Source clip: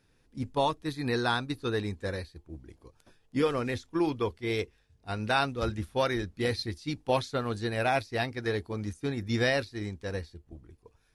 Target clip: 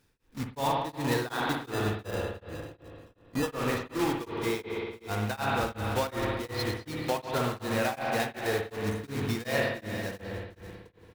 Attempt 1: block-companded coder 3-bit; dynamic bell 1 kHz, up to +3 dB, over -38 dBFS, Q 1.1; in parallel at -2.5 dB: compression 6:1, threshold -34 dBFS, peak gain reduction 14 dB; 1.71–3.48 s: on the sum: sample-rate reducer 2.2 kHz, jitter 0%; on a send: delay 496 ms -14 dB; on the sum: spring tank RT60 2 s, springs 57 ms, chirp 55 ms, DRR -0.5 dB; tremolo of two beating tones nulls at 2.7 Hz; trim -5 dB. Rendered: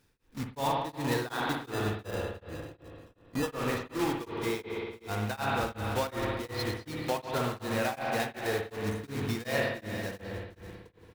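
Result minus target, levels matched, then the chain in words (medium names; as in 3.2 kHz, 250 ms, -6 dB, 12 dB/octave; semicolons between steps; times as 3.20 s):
compression: peak gain reduction +6.5 dB
block-companded coder 3-bit; dynamic bell 1 kHz, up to +3 dB, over -38 dBFS, Q 1.1; in parallel at -2.5 dB: compression 6:1, threshold -26 dBFS, peak gain reduction 7.5 dB; 1.71–3.48 s: on the sum: sample-rate reducer 2.2 kHz, jitter 0%; on a send: delay 496 ms -14 dB; on the sum: spring tank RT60 2 s, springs 57 ms, chirp 55 ms, DRR -0.5 dB; tremolo of two beating tones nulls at 2.7 Hz; trim -5 dB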